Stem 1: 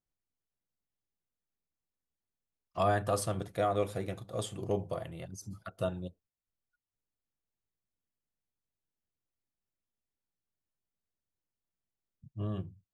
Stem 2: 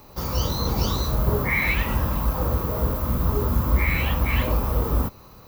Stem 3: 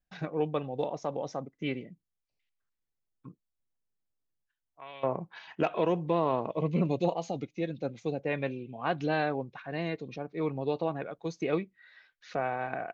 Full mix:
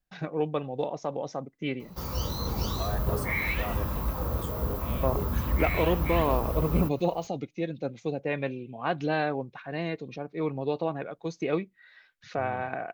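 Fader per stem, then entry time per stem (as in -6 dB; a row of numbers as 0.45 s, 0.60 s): -7.0 dB, -7.0 dB, +1.5 dB; 0.00 s, 1.80 s, 0.00 s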